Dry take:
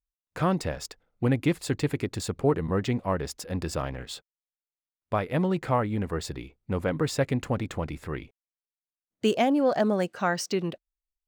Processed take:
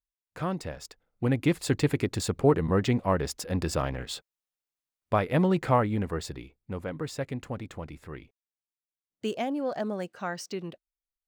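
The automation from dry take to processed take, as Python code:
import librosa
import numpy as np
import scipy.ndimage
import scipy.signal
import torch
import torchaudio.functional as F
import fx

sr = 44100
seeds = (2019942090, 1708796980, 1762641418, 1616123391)

y = fx.gain(x, sr, db=fx.line((0.85, -6.0), (1.69, 2.0), (5.76, 2.0), (6.86, -7.5)))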